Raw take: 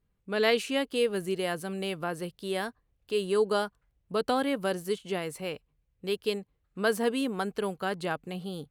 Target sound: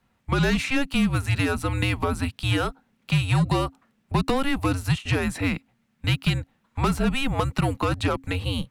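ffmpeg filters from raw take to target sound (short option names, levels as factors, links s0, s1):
-filter_complex "[0:a]asplit=2[s0][s1];[s1]highpass=f=720:p=1,volume=7.94,asoftclip=type=tanh:threshold=0.266[s2];[s0][s2]amix=inputs=2:normalize=0,lowpass=f=2900:p=1,volume=0.501,afreqshift=-270,acrossover=split=150|5300[s3][s4][s5];[s3]acompressor=threshold=0.0251:ratio=4[s6];[s4]acompressor=threshold=0.0316:ratio=4[s7];[s5]acompressor=threshold=0.00447:ratio=4[s8];[s6][s7][s8]amix=inputs=3:normalize=0,volume=2.24"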